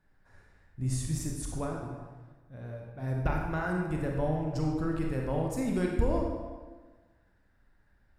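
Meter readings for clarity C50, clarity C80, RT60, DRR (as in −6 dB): 1.5 dB, 4.0 dB, 1.4 s, −0.5 dB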